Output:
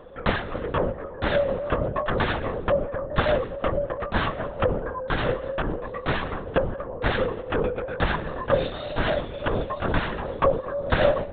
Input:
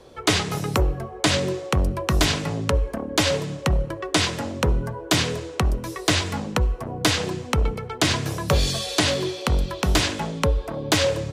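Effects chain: sawtooth pitch modulation +2 st, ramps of 1146 ms; small resonant body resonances 530/1100/1600 Hz, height 16 dB, ringing for 25 ms; LPC vocoder at 8 kHz whisper; trim -7.5 dB

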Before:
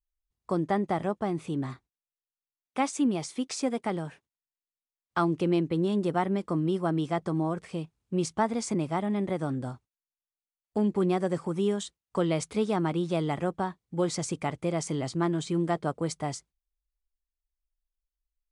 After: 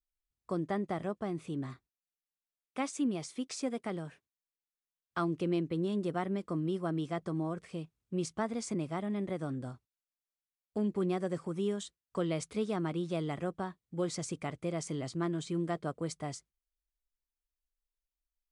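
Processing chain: peaking EQ 860 Hz -6.5 dB 0.29 oct; trim -6 dB

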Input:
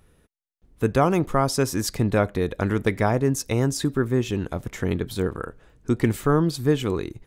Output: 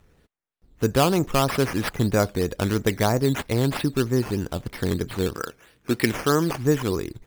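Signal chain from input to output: 5.34–6.53 s: frequency weighting D; decimation with a swept rate 9×, swing 60% 3.1 Hz

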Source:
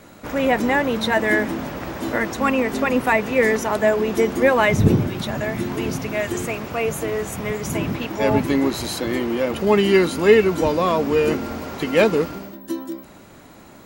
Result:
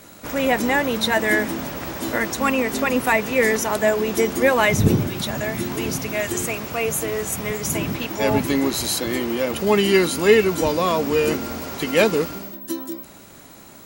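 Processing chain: treble shelf 4.1 kHz +11 dB; trim -1.5 dB

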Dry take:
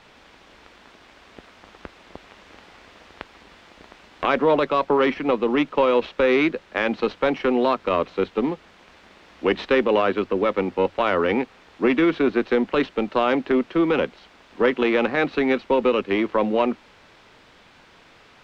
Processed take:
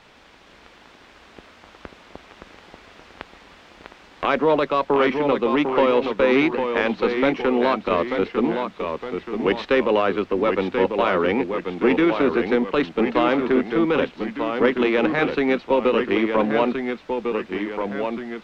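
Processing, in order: ever faster or slower copies 458 ms, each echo -1 st, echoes 2, each echo -6 dB

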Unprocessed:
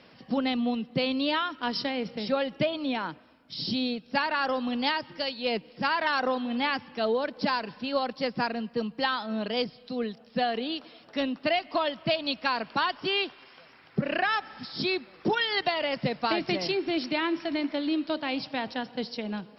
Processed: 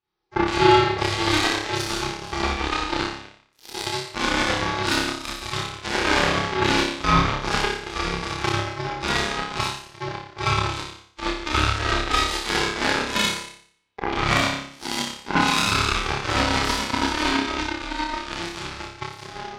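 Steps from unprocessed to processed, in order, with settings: Schroeder reverb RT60 1.5 s, combs from 26 ms, DRR -8.5 dB; ring modulator 610 Hz; Chebyshev shaper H 3 -40 dB, 7 -17 dB, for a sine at -5 dBFS; on a send: flutter echo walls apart 5 m, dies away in 0.53 s; on the sum: trim +1.5 dB

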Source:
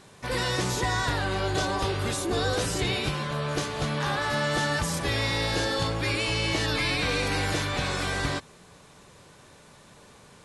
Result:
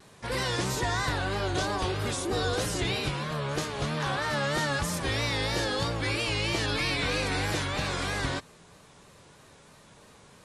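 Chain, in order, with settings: vibrato 3.1 Hz 98 cents; trim -2 dB

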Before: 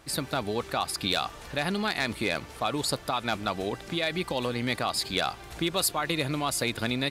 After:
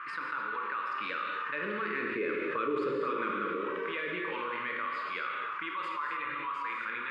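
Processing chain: Doppler pass-by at 2.72 s, 9 m/s, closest 3 m; high-pass 110 Hz; high-order bell 1.8 kHz +15.5 dB; hum notches 50/100/150 Hz; auto-wah 420–1100 Hz, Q 4, down, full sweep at -24 dBFS; Butterworth band-stop 720 Hz, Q 1.2; distance through air 88 m; flutter echo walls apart 8.9 m, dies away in 0.26 s; gated-style reverb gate 300 ms flat, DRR 0 dB; level flattener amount 70%; trim +2 dB

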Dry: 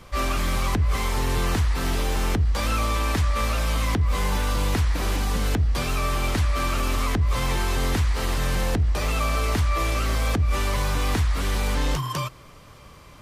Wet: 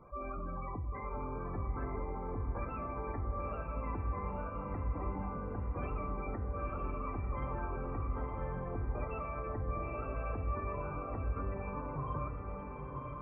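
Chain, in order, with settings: low-pass 1.1 kHz 6 dB/octave; bass shelf 170 Hz -11 dB; spectral gate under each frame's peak -15 dB strong; peak limiter -28.5 dBFS, peak gain reduction 10 dB; on a send: echo that smears into a reverb 970 ms, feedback 44%, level -3 dB; on the sum: simulated room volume 260 m³, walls mixed, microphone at 0.38 m; trim -5 dB

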